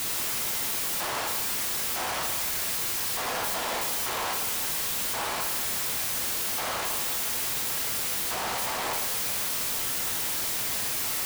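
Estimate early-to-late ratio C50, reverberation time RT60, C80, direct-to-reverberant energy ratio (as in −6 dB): 5.5 dB, 1.2 s, 7.0 dB, 1.5 dB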